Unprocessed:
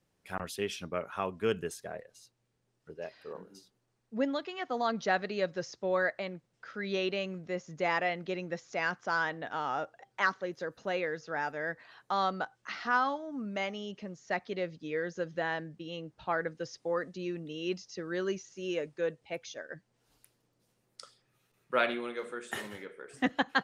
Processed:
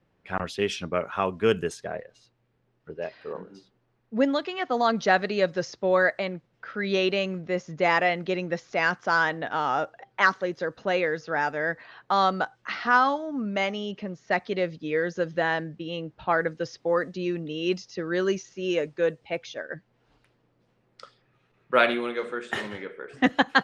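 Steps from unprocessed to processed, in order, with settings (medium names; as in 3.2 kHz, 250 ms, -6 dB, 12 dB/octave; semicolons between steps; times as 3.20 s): level-controlled noise filter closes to 2.6 kHz, open at -26 dBFS; trim +8 dB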